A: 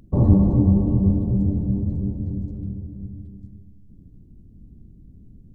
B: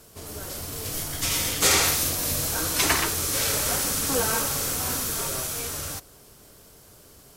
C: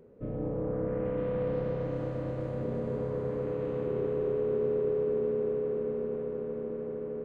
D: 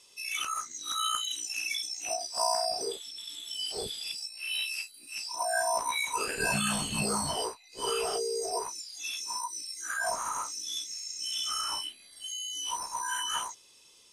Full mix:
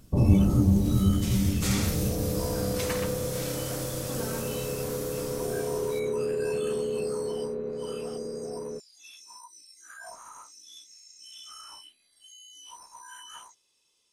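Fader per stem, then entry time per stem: -4.5, -12.5, 0.0, -13.0 dB; 0.00, 0.00, 1.55, 0.00 s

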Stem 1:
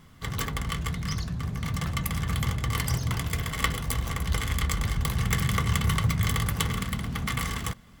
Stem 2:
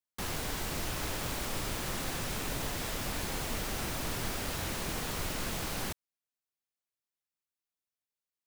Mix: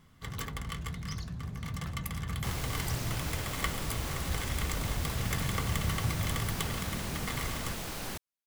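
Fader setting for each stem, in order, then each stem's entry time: -7.5, -2.5 dB; 0.00, 2.25 s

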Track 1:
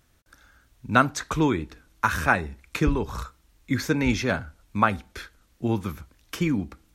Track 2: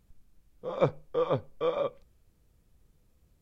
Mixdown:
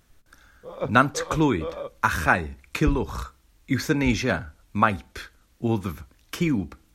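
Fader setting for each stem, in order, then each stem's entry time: +1.0, -4.0 dB; 0.00, 0.00 s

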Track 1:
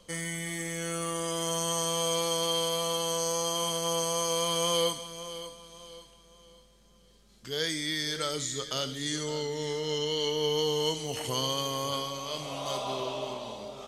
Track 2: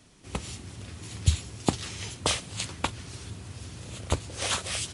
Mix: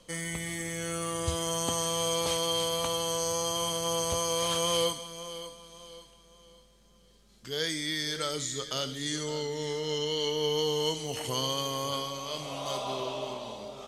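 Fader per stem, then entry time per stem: -0.5, -11.0 dB; 0.00, 0.00 s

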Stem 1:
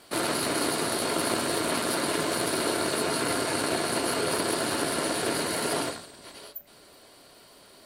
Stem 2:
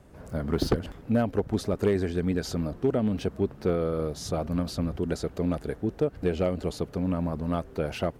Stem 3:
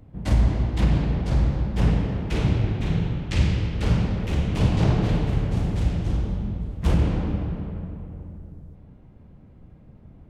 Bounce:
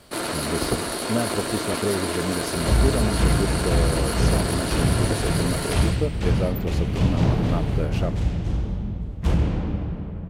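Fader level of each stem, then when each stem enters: 0.0, -0.5, -0.5 dB; 0.00, 0.00, 2.40 s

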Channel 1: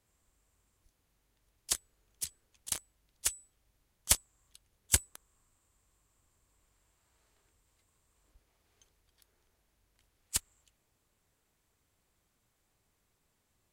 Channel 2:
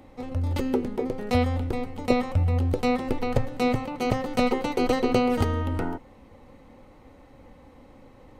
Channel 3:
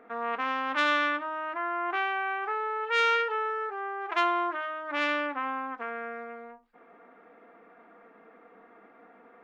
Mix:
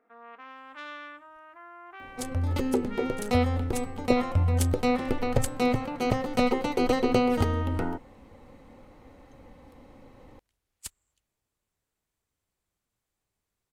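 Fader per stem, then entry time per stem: -8.0, -1.0, -16.0 dB; 0.50, 2.00, 0.00 s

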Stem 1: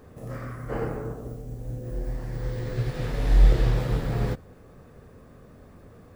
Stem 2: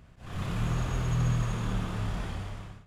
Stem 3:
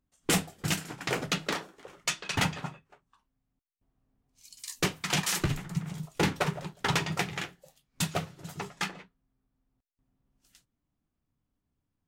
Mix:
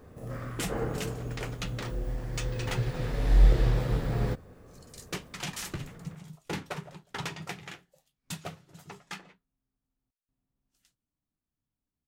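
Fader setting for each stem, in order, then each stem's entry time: -2.5, -16.5, -8.5 dB; 0.00, 0.00, 0.30 s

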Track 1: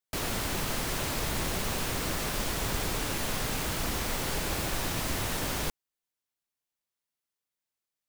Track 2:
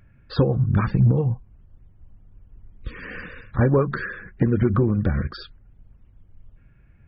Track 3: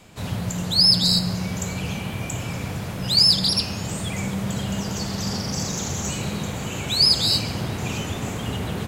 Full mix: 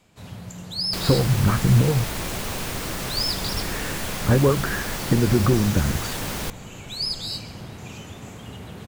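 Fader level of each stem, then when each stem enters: +2.0, +0.5, -10.5 dB; 0.80, 0.70, 0.00 s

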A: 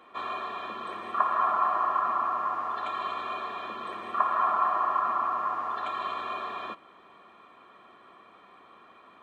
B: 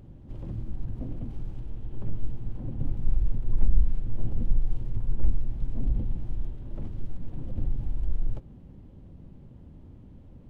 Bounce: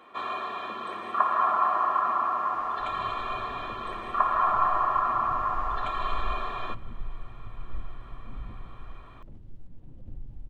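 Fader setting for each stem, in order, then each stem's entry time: +1.5, -12.5 dB; 0.00, 2.50 s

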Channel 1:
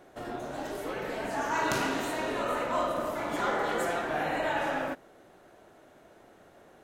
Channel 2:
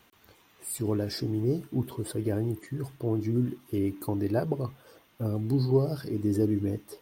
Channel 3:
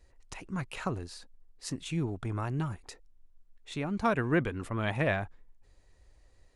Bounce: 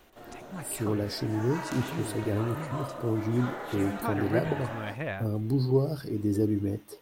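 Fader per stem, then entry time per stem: -8.5, -0.5, -5.5 dB; 0.00, 0.00, 0.00 s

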